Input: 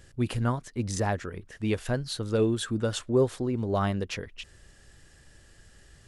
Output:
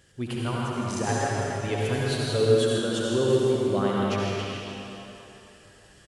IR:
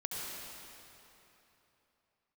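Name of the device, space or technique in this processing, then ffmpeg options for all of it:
stadium PA: -filter_complex "[0:a]highpass=f=130:p=1,equalizer=f=3.1k:t=o:w=0.21:g=5,aecho=1:1:160.3|207:0.355|0.251[a];[1:a]atrim=start_sample=2205[b];[a][b]afir=irnorm=-1:irlink=0,asettb=1/sr,asplit=3[c][d][e];[c]atrim=end=1.064[f];[d]atrim=start=1.06:end=2.78,asetpts=PTS-STARTPTS,afade=t=in:d=0.004:c=qsin,afade=t=out:st=1.716:d=0.004:c=qsin,aecho=1:1:7.3:0.73,atrim=end_sample=75852[g];[e]atrim=start=2.776[h];[f][g]acrossfade=d=0.004:c1=hsin:c2=qsin[i];[i][h]acrossfade=d=0.004:c1=qsin:c2=hsin"

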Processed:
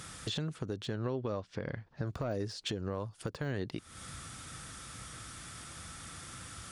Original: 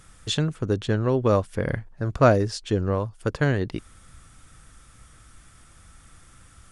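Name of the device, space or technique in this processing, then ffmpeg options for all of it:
broadcast voice chain: -filter_complex "[0:a]highpass=95,deesser=0.95,acompressor=threshold=-38dB:ratio=4,equalizer=f=4.3k:t=o:w=1:g=5,alimiter=level_in=7.5dB:limit=-24dB:level=0:latency=1:release=254,volume=-7.5dB,asettb=1/sr,asplit=3[a][b][c];[a]atrim=end=0.964[d];[b]atrim=start=0.96:end=2.07,asetpts=PTS-STARTPTS,afade=t=in:d=0.004:c=qsin,afade=t=out:st=1.106:d=0.004:c=qsin,lowpass=f=5.9k:w=0.5412,lowpass=f=5.9k:w=1.3066[e];[c]atrim=start=2.066[f];[d][e]acrossfade=d=0.004:c1=hsin:c2=qsin[g];[g][f]acrossfade=d=0.004:c1=qsin:c2=hsin,volume=6.5dB"

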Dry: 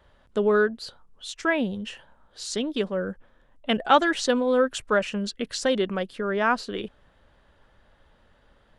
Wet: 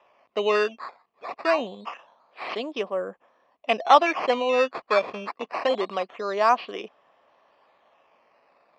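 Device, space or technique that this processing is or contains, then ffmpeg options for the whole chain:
circuit-bent sampling toy: -af "acrusher=samples=10:mix=1:aa=0.000001:lfo=1:lforange=10:lforate=0.25,highpass=400,equalizer=f=700:t=q:w=4:g=8,equalizer=f=1.1k:t=q:w=4:g=9,equalizer=f=1.5k:t=q:w=4:g=-8,equalizer=f=2.5k:t=q:w=4:g=5,equalizer=f=3.8k:t=q:w=4:g=-5,lowpass=f=4.3k:w=0.5412,lowpass=f=4.3k:w=1.3066"

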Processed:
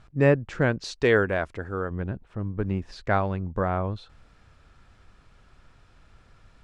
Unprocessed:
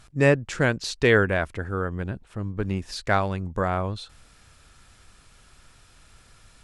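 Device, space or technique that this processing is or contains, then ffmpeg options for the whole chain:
through cloth: -filter_complex "[0:a]lowpass=6.9k,highshelf=f=2.8k:g=-13.5,asettb=1/sr,asplit=3[a][b][c];[a]atrim=end=0.824[d];[b]atrim=start=0.82:end=1.91,asetpts=PTS-STARTPTS,afade=t=in:d=0.004:c=qsin,afade=t=out:st=1.086:d=0.004:c=qsin,bass=f=250:g=-5,treble=f=4k:g=9[e];[c]atrim=start=1.906[f];[d][e]acrossfade=d=0.004:c1=hsin:c2=qsin[g];[g][f]acrossfade=d=0.004:c1=qsin:c2=hsin"

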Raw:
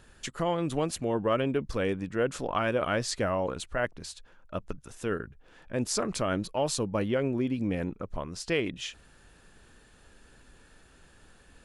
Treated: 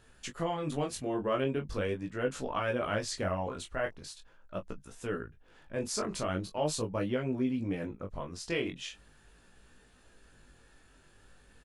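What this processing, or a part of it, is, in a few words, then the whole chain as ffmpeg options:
double-tracked vocal: -filter_complex "[0:a]asplit=2[a][b];[b]adelay=20,volume=-8.5dB[c];[a][c]amix=inputs=2:normalize=0,flanger=delay=15.5:depth=7.6:speed=0.41,volume=-1.5dB"

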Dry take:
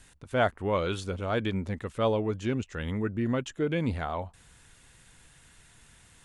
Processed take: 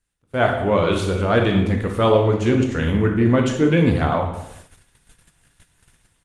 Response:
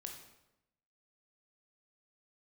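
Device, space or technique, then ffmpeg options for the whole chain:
speakerphone in a meeting room: -filter_complex "[1:a]atrim=start_sample=2205[a];[0:a][a]afir=irnorm=-1:irlink=0,asplit=2[b][c];[c]adelay=90,highpass=300,lowpass=3.4k,asoftclip=type=hard:threshold=-25dB,volume=-24dB[d];[b][d]amix=inputs=2:normalize=0,dynaudnorm=f=140:g=5:m=16.5dB,agate=range=-16dB:threshold=-40dB:ratio=16:detection=peak" -ar 48000 -c:a libopus -b:a 24k

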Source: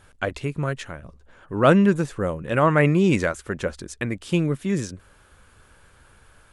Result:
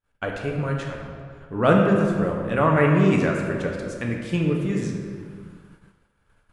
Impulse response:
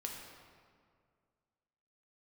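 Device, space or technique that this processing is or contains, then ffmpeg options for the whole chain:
swimming-pool hall: -filter_complex "[1:a]atrim=start_sample=2205[a];[0:a][a]afir=irnorm=-1:irlink=0,highshelf=f=5.1k:g=-7,agate=range=-33dB:threshold=-43dB:ratio=3:detection=peak,volume=1dB"

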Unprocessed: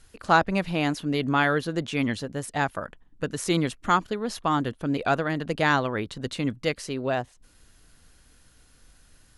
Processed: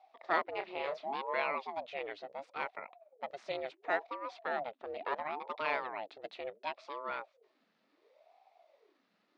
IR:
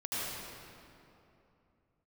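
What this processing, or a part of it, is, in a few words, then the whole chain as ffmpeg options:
voice changer toy: -filter_complex "[0:a]aeval=exprs='val(0)*sin(2*PI*480*n/s+480*0.6/0.71*sin(2*PI*0.71*n/s))':c=same,highpass=530,equalizer=f=640:t=q:w=4:g=6,equalizer=f=1.6k:t=q:w=4:g=-4,equalizer=f=3.1k:t=q:w=4:g=-5,lowpass=f=3.8k:w=0.5412,lowpass=f=3.8k:w=1.3066,asettb=1/sr,asplit=3[a][b][c];[a]atrim=end=0.534[d];[b]atrim=start=0.53:end=1.16,asetpts=PTS-STARTPTS,afade=t=in:d=0.004:c=qsin,afade=t=out:st=0.626:d=0.004:c=qsin,asplit=2[e][f];[f]adelay=30,volume=-7dB[g];[e][g]amix=inputs=2:normalize=0,atrim=end_sample=27783[h];[c]atrim=start=1.156[i];[d][h]acrossfade=d=0.004:c1=hsin:c2=qsin[j];[j][i]acrossfade=d=0.004:c1=qsin:c2=hsin,volume=-7.5dB"

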